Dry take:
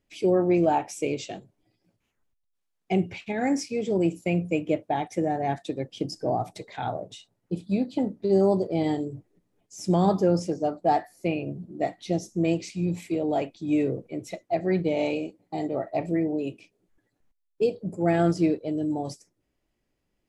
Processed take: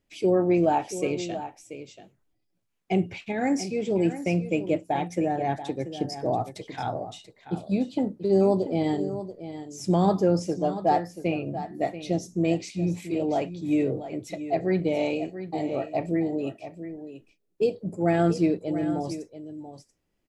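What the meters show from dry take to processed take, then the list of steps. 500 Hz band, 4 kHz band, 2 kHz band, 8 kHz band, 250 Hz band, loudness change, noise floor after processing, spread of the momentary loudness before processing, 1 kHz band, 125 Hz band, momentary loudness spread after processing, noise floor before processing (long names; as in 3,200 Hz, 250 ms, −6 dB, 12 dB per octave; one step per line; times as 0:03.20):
+0.5 dB, +0.5 dB, +0.5 dB, +0.5 dB, +0.5 dB, 0.0 dB, −74 dBFS, 13 LU, +0.5 dB, +0.5 dB, 15 LU, −77 dBFS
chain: single-tap delay 684 ms −12 dB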